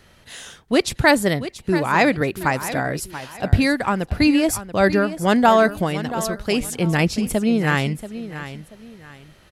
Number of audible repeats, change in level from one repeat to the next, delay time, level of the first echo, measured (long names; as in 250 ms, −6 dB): 2, −10.5 dB, 683 ms, −13.0 dB